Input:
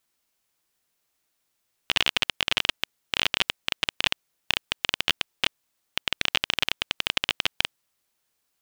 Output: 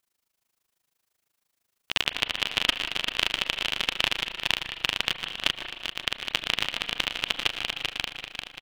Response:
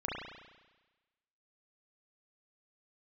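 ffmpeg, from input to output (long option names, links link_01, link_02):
-filter_complex "[0:a]aecho=1:1:393|786|1179|1572|1965|2358|2751:0.596|0.31|0.161|0.0838|0.0436|0.0226|0.0118,asplit=2[link_01][link_02];[1:a]atrim=start_sample=2205,asetrate=48510,aresample=44100,adelay=123[link_03];[link_02][link_03]afir=irnorm=-1:irlink=0,volume=-12dB[link_04];[link_01][link_04]amix=inputs=2:normalize=0,tremolo=f=26:d=0.919,volume=1dB"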